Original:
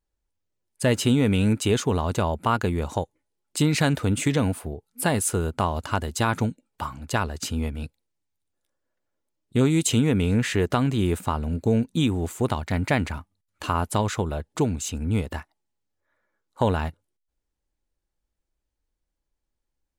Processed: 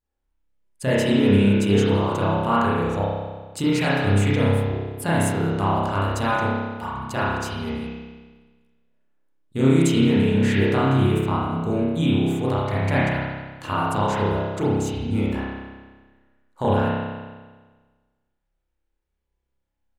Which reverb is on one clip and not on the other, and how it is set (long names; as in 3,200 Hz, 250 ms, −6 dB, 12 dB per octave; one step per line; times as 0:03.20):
spring reverb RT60 1.4 s, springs 30 ms, chirp 55 ms, DRR −9 dB
level −6 dB